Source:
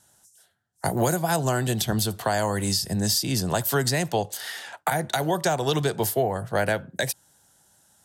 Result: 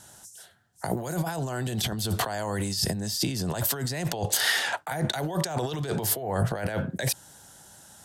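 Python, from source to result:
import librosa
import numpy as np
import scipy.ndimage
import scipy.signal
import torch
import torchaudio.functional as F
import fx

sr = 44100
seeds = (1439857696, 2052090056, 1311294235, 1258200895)

y = fx.high_shelf(x, sr, hz=10000.0, db=-5.0)
y = fx.over_compress(y, sr, threshold_db=-33.0, ratio=-1.0)
y = F.gain(torch.from_numpy(y), 4.0).numpy()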